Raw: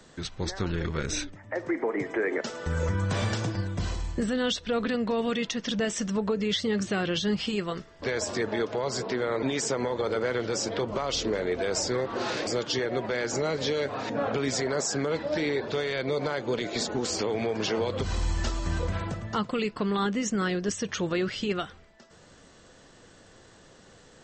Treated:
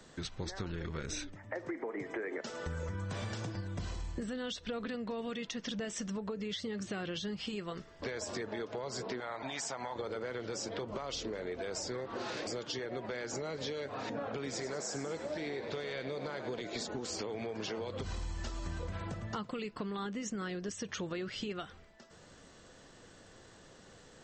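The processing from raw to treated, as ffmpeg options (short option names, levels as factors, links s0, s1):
-filter_complex "[0:a]asettb=1/sr,asplit=3[s0][s1][s2];[s0]atrim=end=9.204[s3];[s1]atrim=start=9.2:end=9.96,asetpts=PTS-STARTPTS,afade=t=in:d=0.004:c=qsin,afade=t=out:st=0.756:d=0.004:c=qsin,lowshelf=f=570:t=q:w=3:g=-7[s4];[s2]atrim=start=9.956[s5];[s3][s4]acrossfade=d=0.004:c1=hsin:c2=qsin[s6];[s6][s5]acrossfade=d=0.004:c1=qsin:c2=hsin,asettb=1/sr,asplit=3[s7][s8][s9];[s7]atrim=end=14.324[s10];[s8]atrim=start=14.32:end=16.61,asetpts=PTS-STARTPTS,afade=t=in:d=0.004:c=qsin,afade=t=out:st=2.286:d=0.004:c=qsin,asplit=8[s11][s12][s13][s14][s15][s16][s17][s18];[s12]adelay=99,afreqshift=62,volume=0.316[s19];[s13]adelay=198,afreqshift=124,volume=0.18[s20];[s14]adelay=297,afreqshift=186,volume=0.102[s21];[s15]adelay=396,afreqshift=248,volume=0.0589[s22];[s16]adelay=495,afreqshift=310,volume=0.0335[s23];[s17]adelay=594,afreqshift=372,volume=0.0191[s24];[s18]adelay=693,afreqshift=434,volume=0.0108[s25];[s11][s19][s20][s21][s22][s23][s24][s25]amix=inputs=8:normalize=0,atrim=end_sample=100989[s26];[s9]atrim=start=16.606[s27];[s10][s26]acrossfade=d=0.004:c1=hsin:c2=qsin[s28];[s28][s27]acrossfade=d=0.004:c1=qsin:c2=hsin,acompressor=threshold=0.0224:ratio=6,volume=0.708"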